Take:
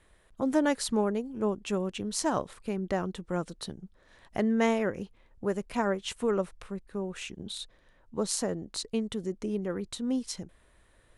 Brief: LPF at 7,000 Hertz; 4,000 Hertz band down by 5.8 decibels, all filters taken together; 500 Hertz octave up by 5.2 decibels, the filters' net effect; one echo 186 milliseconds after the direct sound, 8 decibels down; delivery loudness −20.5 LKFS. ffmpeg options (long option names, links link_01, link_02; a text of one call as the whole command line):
ffmpeg -i in.wav -af "lowpass=7000,equalizer=frequency=500:width_type=o:gain=6.5,equalizer=frequency=4000:width_type=o:gain=-7,aecho=1:1:186:0.398,volume=7.5dB" out.wav